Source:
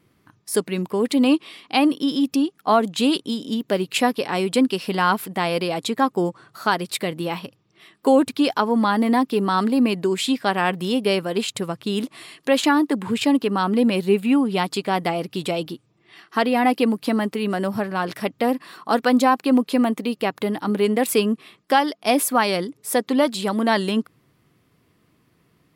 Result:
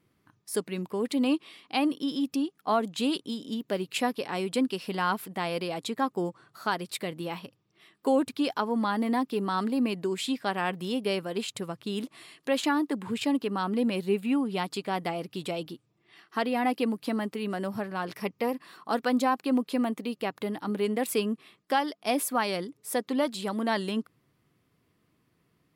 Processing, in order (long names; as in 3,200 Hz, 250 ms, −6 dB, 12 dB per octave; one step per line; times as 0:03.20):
0:18.14–0:18.54: EQ curve with evenly spaced ripples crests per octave 0.82, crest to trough 7 dB
level −8.5 dB